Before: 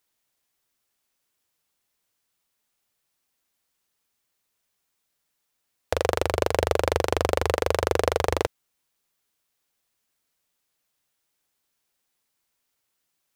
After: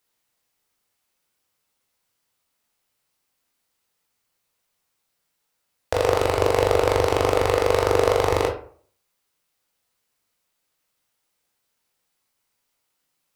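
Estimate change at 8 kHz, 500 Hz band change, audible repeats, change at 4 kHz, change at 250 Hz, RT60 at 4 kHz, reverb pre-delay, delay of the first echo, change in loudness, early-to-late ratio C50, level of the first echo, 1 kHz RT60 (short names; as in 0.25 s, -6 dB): +1.5 dB, +5.0 dB, none, +2.0 dB, +3.5 dB, 0.30 s, 15 ms, none, +4.0 dB, 7.5 dB, none, 0.45 s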